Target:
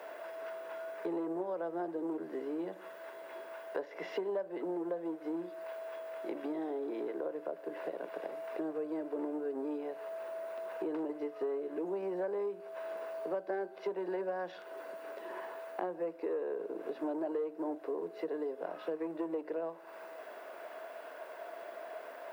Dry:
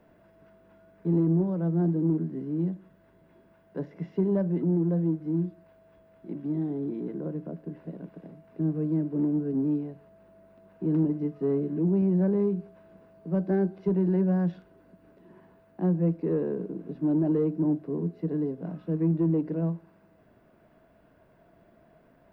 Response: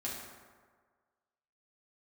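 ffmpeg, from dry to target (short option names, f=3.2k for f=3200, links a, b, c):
-af "highpass=f=490:w=0.5412,highpass=f=490:w=1.3066,acompressor=threshold=-53dB:ratio=5,volume=17dB"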